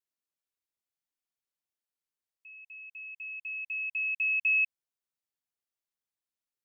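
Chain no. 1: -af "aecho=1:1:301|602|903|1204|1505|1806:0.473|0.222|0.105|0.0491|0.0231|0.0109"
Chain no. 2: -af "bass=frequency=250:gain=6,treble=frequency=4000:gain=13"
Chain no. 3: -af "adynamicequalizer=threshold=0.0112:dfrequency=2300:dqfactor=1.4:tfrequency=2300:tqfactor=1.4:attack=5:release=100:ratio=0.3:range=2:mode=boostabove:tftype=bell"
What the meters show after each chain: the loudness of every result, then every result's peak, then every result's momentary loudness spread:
−31.0, −26.5, −24.5 LKFS; −21.5, −19.5, −18.0 dBFS; 21, 19, 22 LU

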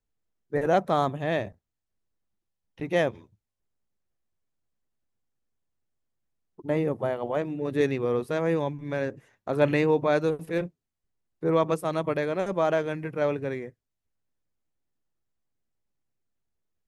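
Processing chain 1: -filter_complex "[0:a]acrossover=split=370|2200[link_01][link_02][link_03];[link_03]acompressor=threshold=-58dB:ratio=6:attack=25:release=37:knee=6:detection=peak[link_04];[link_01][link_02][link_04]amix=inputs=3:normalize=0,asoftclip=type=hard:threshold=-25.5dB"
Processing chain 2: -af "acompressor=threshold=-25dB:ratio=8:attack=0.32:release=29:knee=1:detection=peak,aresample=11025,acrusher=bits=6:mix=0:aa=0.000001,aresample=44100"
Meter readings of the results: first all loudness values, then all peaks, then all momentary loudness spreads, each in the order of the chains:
−31.0, −32.5 LKFS; −25.5, −21.0 dBFS; 7, 7 LU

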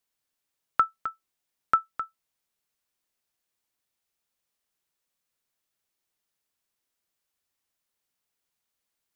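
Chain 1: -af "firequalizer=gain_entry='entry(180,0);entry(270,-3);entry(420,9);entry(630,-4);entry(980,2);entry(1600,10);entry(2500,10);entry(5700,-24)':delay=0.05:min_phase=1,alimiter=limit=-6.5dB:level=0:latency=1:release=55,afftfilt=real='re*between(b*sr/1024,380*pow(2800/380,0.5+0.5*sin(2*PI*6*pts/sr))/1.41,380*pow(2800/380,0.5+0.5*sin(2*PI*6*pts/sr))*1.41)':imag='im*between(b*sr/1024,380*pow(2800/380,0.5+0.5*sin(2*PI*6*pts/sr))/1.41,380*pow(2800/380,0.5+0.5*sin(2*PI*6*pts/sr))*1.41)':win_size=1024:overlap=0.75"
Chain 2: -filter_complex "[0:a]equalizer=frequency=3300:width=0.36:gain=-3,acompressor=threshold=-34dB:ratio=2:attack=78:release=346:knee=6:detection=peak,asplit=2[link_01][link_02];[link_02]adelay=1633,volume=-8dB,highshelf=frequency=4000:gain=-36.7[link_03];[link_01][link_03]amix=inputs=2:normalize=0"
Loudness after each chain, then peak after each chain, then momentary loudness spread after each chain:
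−31.0, −36.0 LKFS; −7.0, −11.0 dBFS; 11, 23 LU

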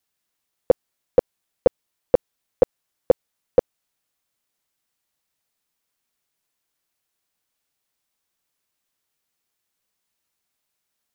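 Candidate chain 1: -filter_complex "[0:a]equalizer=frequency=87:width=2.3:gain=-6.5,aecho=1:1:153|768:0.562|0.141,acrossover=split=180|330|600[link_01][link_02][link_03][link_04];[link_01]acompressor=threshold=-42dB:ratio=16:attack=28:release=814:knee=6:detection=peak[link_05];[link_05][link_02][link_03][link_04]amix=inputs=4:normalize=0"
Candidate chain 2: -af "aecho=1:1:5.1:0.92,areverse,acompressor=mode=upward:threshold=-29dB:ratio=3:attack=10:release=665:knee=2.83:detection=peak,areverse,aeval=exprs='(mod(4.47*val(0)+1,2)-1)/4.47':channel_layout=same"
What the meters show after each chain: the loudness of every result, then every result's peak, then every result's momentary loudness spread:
−24.0, −29.0 LKFS; −3.5, −13.0 dBFS; 18, 17 LU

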